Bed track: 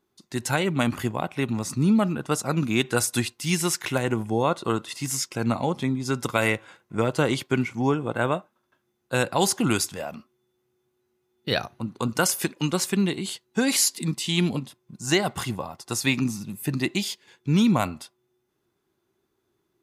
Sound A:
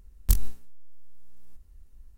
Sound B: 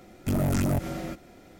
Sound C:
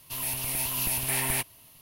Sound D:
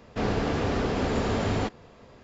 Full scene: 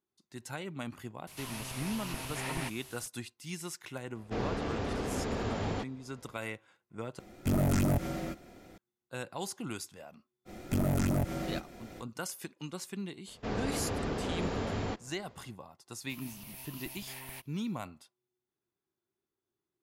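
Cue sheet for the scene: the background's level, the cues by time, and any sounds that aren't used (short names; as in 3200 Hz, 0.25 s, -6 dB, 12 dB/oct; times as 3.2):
bed track -16.5 dB
1.27 add C -5 dB + delta modulation 64 kbps, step -40 dBFS
4.15 add D -8 dB
7.19 replace with B -2.5 dB
10.45 add B -4 dB, fades 0.05 s + three-band squash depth 40%
13.27 add D -8 dB
15.99 add C -16 dB + bell 10000 Hz -5.5 dB 0.76 oct
not used: A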